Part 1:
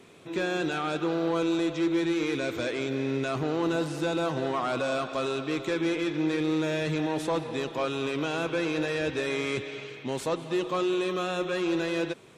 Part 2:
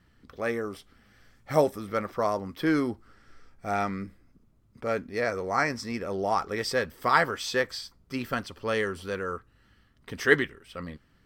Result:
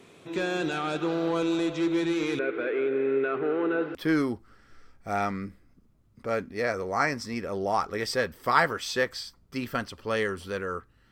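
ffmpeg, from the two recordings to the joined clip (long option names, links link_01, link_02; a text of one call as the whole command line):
ffmpeg -i cue0.wav -i cue1.wav -filter_complex "[0:a]asettb=1/sr,asplit=3[link_01][link_02][link_03];[link_01]atrim=end=2.394[link_04];[link_02]atrim=start=2.39:end=3.95,asetpts=PTS-STARTPTS,afade=type=in:duration=0.004:curve=qsin,afade=type=out:start_time=1.556:duration=0.004:curve=qsin,highpass=300,equalizer=frequency=420:width_type=q:width=4:gain=10,equalizer=frequency=650:width_type=q:width=4:gain=-5,equalizer=frequency=970:width_type=q:width=4:gain=-7,equalizer=frequency=1400:width_type=q:width=4:gain=6,lowpass=frequency=2400:width=0.5412,lowpass=frequency=2400:width=1.3066[link_05];[link_03]atrim=start=3.946[link_06];[link_04][link_05]acrossfade=duration=0.004:curve1=hsin:curve2=qsin[link_07];[link_07][link_06]acrossfade=duration=0.004:curve1=qsin:curve2=hsin,apad=whole_dur=11.11,atrim=end=11.11,atrim=end=3.952[link_08];[1:a]atrim=start=2.528:end=9.69[link_09];[link_08][link_09]acrossfade=duration=0.004:curve1=hsin:curve2=hsin" out.wav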